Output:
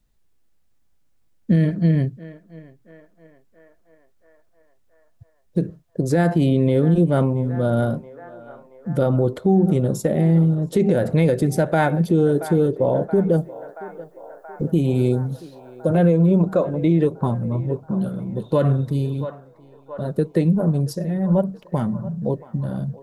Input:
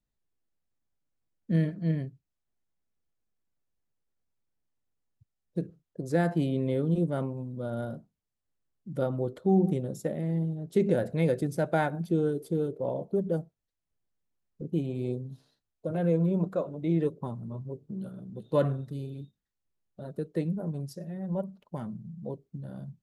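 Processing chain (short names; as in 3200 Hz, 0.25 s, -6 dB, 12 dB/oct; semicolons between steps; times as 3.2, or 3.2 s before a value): 13.38–15.9 high shelf 7500 Hz +11 dB; narrowing echo 0.677 s, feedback 80%, band-pass 990 Hz, level -17 dB; compressor, threshold -25 dBFS, peak gain reduction 7 dB; low shelf 70 Hz +7 dB; maximiser +21 dB; gain -7.5 dB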